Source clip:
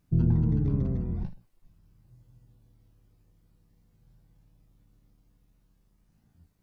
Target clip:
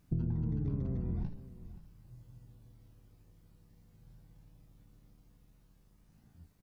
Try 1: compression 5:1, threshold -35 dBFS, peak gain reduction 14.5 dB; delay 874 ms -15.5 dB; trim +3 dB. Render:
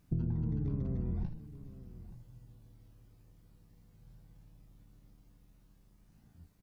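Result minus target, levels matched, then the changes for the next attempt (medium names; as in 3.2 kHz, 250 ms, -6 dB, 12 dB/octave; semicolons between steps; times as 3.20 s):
echo 348 ms late
change: delay 526 ms -15.5 dB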